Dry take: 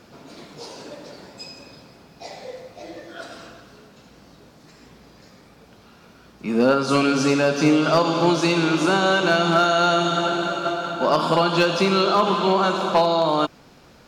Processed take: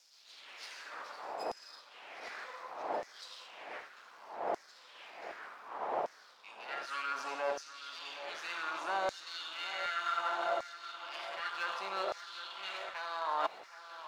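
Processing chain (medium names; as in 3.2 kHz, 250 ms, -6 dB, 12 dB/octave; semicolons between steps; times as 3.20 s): partial rectifier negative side -12 dB; wind noise 520 Hz -33 dBFS; treble shelf 3.1 kHz -9.5 dB; reverse; compression 6:1, threshold -31 dBFS, peak gain reduction 15.5 dB; reverse; LFO high-pass saw down 0.66 Hz 620–5800 Hz; echo whose repeats swap between lows and highs 769 ms, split 2.4 kHz, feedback 72%, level -13 dB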